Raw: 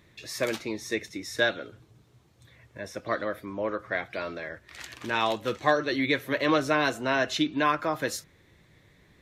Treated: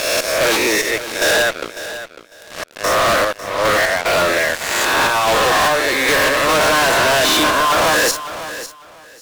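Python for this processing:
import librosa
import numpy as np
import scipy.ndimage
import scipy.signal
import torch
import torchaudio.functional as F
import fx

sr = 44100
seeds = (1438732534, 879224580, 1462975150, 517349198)

p1 = fx.spec_swells(x, sr, rise_s=1.21)
p2 = scipy.signal.sosfilt(scipy.signal.butter(2, 440.0, 'highpass', fs=sr, output='sos'), p1)
p3 = fx.dynamic_eq(p2, sr, hz=950.0, q=0.93, threshold_db=-34.0, ratio=4.0, max_db=5)
p4 = fx.step_gate(p3, sr, bpm=74, pattern='x.xx..x.xxxx', floor_db=-12.0, edge_ms=4.5)
p5 = fx.fuzz(p4, sr, gain_db=41.0, gate_db=-43.0)
y = p5 + fx.echo_feedback(p5, sr, ms=550, feedback_pct=20, wet_db=-13, dry=0)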